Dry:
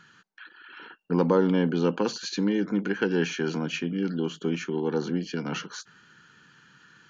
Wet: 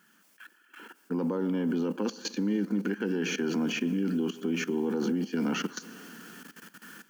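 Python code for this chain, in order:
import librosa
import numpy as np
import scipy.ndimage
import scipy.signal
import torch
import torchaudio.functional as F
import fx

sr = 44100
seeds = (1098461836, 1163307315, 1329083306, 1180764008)

p1 = fx.quant_dither(x, sr, seeds[0], bits=8, dither='triangular')
p2 = x + F.gain(torch.from_numpy(p1), -9.0).numpy()
p3 = fx.rider(p2, sr, range_db=4, speed_s=0.5)
p4 = fx.peak_eq(p3, sr, hz=3900.0, db=-8.0, octaves=0.22)
p5 = p4 + fx.echo_tape(p4, sr, ms=126, feedback_pct=58, wet_db=-20.0, lp_hz=2400.0, drive_db=5.0, wow_cents=21, dry=0)
p6 = fx.rev_schroeder(p5, sr, rt60_s=3.4, comb_ms=27, drr_db=17.5)
p7 = fx.level_steps(p6, sr, step_db=16)
y = fx.low_shelf_res(p7, sr, hz=150.0, db=-13.5, q=3.0)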